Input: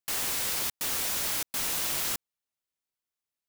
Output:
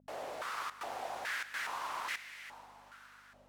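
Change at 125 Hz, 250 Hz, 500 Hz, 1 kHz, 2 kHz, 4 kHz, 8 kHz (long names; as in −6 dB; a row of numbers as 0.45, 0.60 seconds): below −15 dB, −12.5 dB, −1.0 dB, +2.0 dB, −1.5 dB, −13.0 dB, −21.5 dB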